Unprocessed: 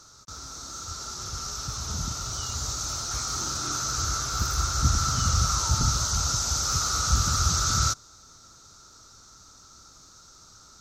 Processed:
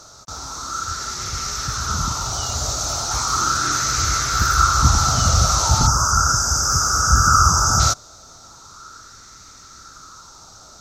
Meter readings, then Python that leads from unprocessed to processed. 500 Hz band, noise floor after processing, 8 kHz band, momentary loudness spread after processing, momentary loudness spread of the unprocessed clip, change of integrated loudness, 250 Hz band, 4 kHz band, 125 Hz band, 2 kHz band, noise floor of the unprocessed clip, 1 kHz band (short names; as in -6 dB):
+10.0 dB, -45 dBFS, +7.0 dB, 11 LU, 12 LU, +8.0 dB, +7.0 dB, +6.5 dB, +7.0 dB, +12.5 dB, -52 dBFS, +12.5 dB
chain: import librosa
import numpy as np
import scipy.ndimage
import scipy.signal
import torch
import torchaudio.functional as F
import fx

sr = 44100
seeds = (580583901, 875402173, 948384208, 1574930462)

y = fx.spec_box(x, sr, start_s=5.87, length_s=1.93, low_hz=1700.0, high_hz=4700.0, gain_db=-22)
y = fx.bell_lfo(y, sr, hz=0.37, low_hz=650.0, high_hz=2100.0, db=11)
y = y * 10.0 ** (7.0 / 20.0)